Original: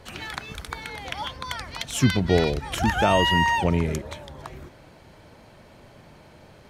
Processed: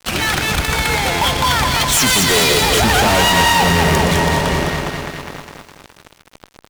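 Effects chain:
0:01.92–0:02.61: spectral tilt +4 dB per octave
on a send: echo with a time of its own for lows and highs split 2,400 Hz, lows 407 ms, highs 120 ms, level −13.5 dB
on the sum: fuzz pedal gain 40 dB, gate −41 dBFS
buffer that repeats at 0:01.11, samples 512, times 8
feedback echo at a low word length 207 ms, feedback 55%, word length 7 bits, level −4.5 dB

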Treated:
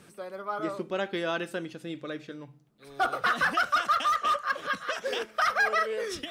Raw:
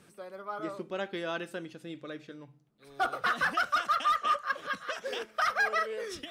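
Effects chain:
in parallel at −2.5 dB: brickwall limiter −25 dBFS, peak gain reduction 7 dB
0:03.96–0:04.51: on the sum: gain into a clipping stage and back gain 21 dB

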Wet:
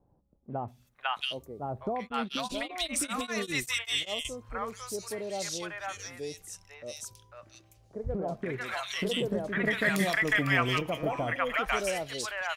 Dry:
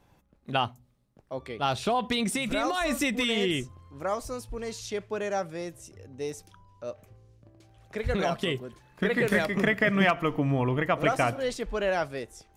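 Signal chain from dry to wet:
tilt shelving filter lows −5 dB, about 1,100 Hz
three-band delay without the direct sound lows, mids, highs 500/680 ms, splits 770/2,500 Hz
0:02.00–0:04.25: tremolo along a rectified sine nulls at 5.1 Hz

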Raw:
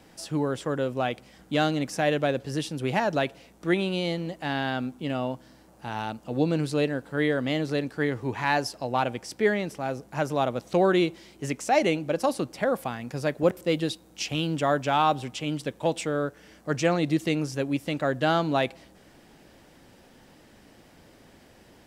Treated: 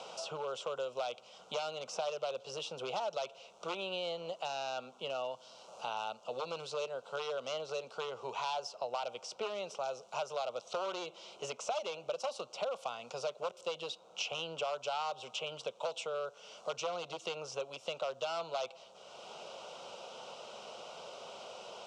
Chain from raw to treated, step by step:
wavefolder on the positive side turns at −18.5 dBFS
downward compressor, threshold −27 dBFS, peak gain reduction 9 dB
loudspeaker in its box 490–6,200 Hz, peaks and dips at 810 Hz −5 dB, 1,400 Hz +7 dB, 2,000 Hz −8 dB, 2,800 Hz +5 dB, 4,700 Hz −5 dB
phaser with its sweep stopped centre 710 Hz, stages 4
multiband upward and downward compressor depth 70%

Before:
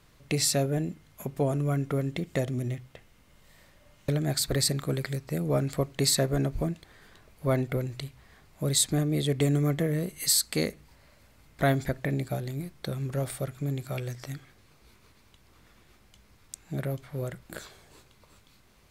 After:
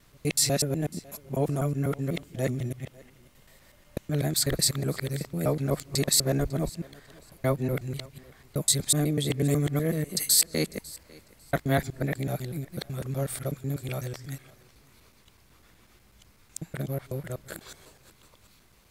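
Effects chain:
reversed piece by piece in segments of 124 ms
high-shelf EQ 7,500 Hz +6 dB
feedback echo with a high-pass in the loop 549 ms, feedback 21%, high-pass 230 Hz, level −22 dB

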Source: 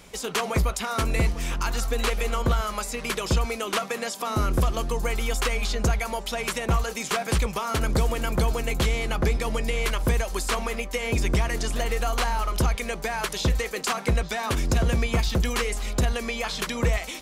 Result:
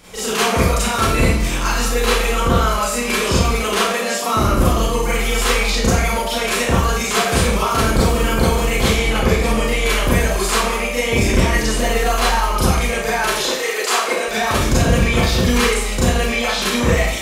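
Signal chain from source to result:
0:13.34–0:14.28: high-pass filter 340 Hz 24 dB per octave
four-comb reverb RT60 0.64 s, combs from 29 ms, DRR −9 dB
level +1 dB

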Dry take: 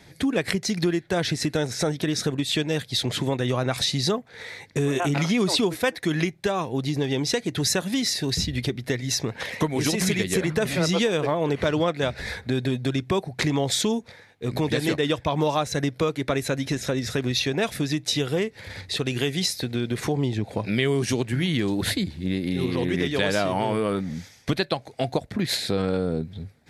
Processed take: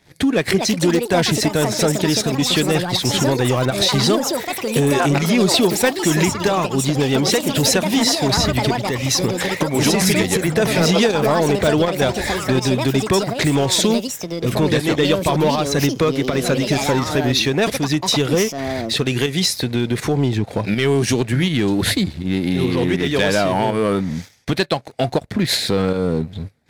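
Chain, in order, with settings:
leveller curve on the samples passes 2
delay with pitch and tempo change per echo 353 ms, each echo +6 semitones, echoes 2, each echo −6 dB
fake sidechain pumping 81 BPM, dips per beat 1, −7 dB, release 172 ms

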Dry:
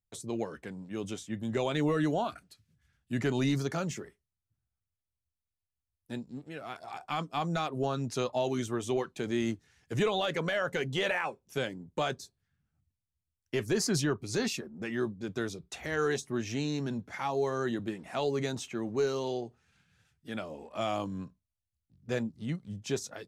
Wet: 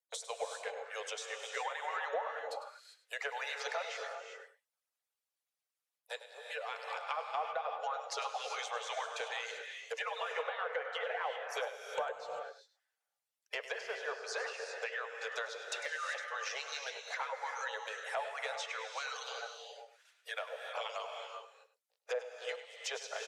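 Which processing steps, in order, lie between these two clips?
harmonic-percussive split with one part muted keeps percussive
Chebyshev high-pass filter 450 Hz, order 8
treble cut that deepens with the level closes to 1,200 Hz, closed at −33.5 dBFS
downward compressor 2 to 1, threshold −47 dBFS, peak gain reduction 10 dB
soft clipping −30 dBFS, distortion −29 dB
on a send: single-tap delay 101 ms −13 dB
on the sum: reverb whose tail is shaped and stops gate 420 ms rising, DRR 4 dB
level +7.5 dB

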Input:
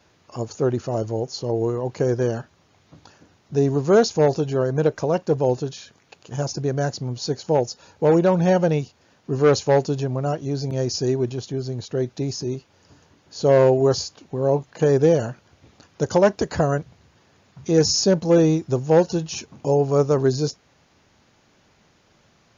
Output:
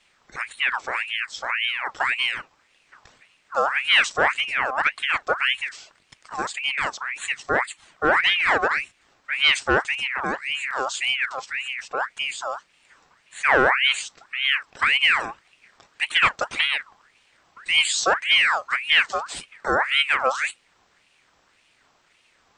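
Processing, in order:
ring modulator whose carrier an LFO sweeps 1,800 Hz, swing 50%, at 1.8 Hz

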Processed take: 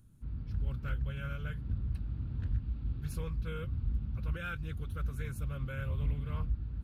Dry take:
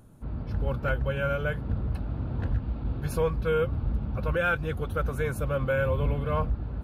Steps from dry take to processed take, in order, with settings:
guitar amp tone stack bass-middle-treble 6-0-2
highs frequency-modulated by the lows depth 0.29 ms
level +7.5 dB

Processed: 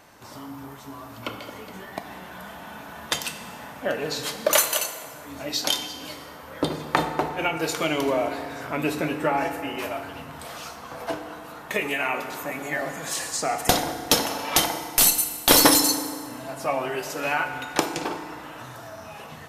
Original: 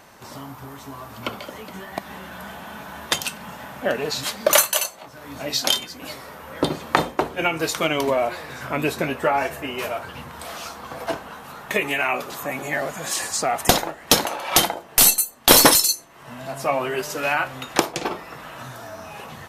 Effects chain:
feedback delay network reverb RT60 2.3 s, low-frequency decay 0.95×, high-frequency decay 0.6×, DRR 6.5 dB
level −4 dB

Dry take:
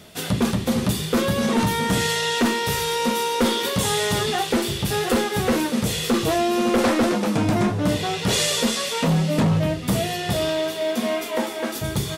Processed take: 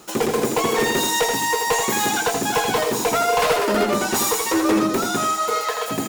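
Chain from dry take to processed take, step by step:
on a send: multi-tap delay 163/662 ms −5.5/−17 dB
on the sum: wrong playback speed 7.5 ips tape played at 15 ips

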